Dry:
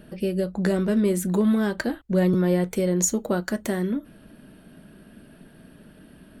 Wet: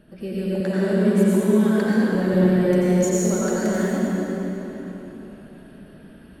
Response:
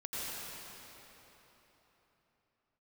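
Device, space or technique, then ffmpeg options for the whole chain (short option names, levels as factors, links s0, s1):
swimming-pool hall: -filter_complex "[1:a]atrim=start_sample=2205[s0];[0:a][s0]afir=irnorm=-1:irlink=0,highshelf=f=5300:g=-5,asettb=1/sr,asplit=3[s1][s2][s3];[s1]atrim=end=0.604[s4];[s2]atrim=start=0.6:end=2.15,asetpts=PTS-STARTPTS,afade=t=in:d=0.004:c=qsin,afade=t=out:st=1.546:d=0.004:c=qsin,highpass=91[s5];[s3]atrim=start=2.146[s6];[s4][s5]acrossfade=d=0.004:c1=hsin:c2=qsin[s7];[s7][s6]acrossfade=d=0.004:c1=qsin:c2=hsin"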